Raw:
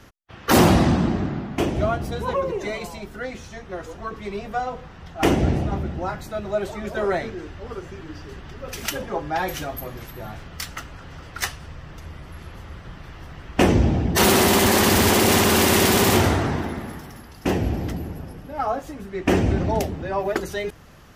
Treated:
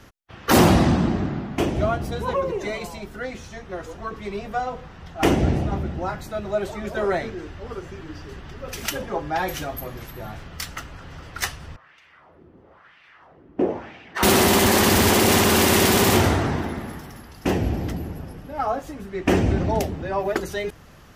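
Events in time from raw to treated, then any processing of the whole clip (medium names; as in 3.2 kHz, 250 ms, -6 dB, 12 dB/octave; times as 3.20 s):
11.76–14.23 s: wah-wah 1 Hz 290–2500 Hz, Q 2.1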